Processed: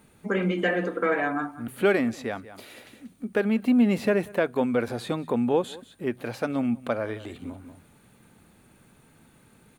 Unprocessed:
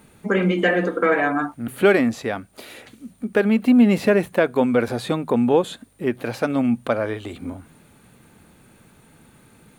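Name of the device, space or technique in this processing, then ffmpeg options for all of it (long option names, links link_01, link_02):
ducked delay: -filter_complex "[0:a]asplit=3[link_01][link_02][link_03];[link_02]adelay=187,volume=-7.5dB[link_04];[link_03]apad=whole_len=439965[link_05];[link_04][link_05]sidechaincompress=threshold=-35dB:ratio=8:attack=16:release=273[link_06];[link_01][link_06]amix=inputs=2:normalize=0,volume=-6dB"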